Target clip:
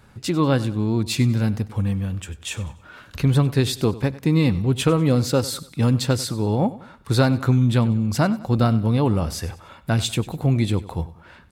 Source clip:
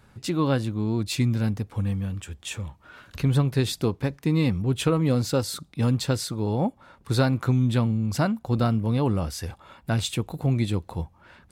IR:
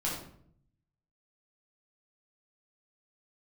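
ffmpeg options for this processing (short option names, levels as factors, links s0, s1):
-af "aecho=1:1:96|192|288:0.133|0.0533|0.0213,volume=1.58"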